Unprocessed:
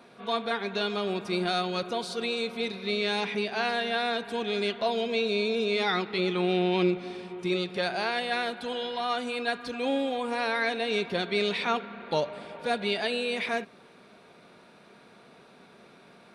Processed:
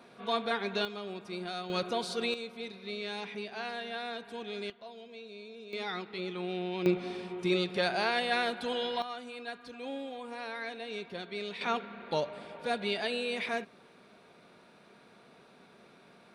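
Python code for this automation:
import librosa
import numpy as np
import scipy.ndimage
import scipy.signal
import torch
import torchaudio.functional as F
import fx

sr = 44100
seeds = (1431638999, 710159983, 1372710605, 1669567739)

y = fx.gain(x, sr, db=fx.steps((0.0, -2.0), (0.85, -10.5), (1.7, -1.5), (2.34, -10.0), (4.7, -20.0), (5.73, -10.0), (6.86, -0.5), (9.02, -11.5), (11.61, -4.0)))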